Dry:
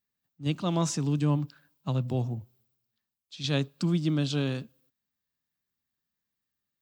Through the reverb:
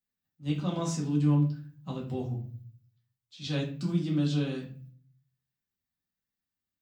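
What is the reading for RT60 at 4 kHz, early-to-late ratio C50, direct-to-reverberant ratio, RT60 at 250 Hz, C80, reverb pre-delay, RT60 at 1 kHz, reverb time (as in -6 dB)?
0.30 s, 8.0 dB, -3.5 dB, 0.75 s, 13.0 dB, 4 ms, 0.35 s, 0.40 s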